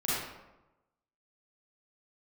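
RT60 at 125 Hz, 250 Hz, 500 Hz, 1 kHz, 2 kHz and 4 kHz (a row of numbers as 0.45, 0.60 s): 1.1, 1.1, 1.0, 1.0, 0.80, 0.60 s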